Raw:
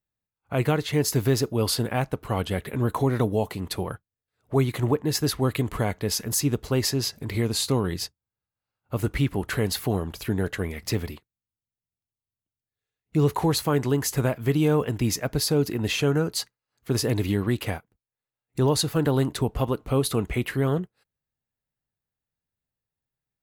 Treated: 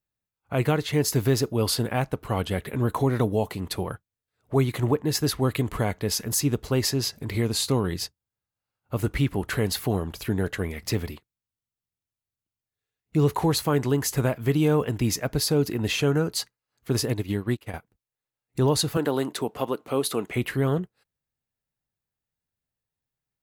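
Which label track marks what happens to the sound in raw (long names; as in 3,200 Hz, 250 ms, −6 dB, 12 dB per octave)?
17.050000	17.740000	expander for the loud parts 2.5 to 1, over −37 dBFS
18.970000	20.350000	high-pass filter 260 Hz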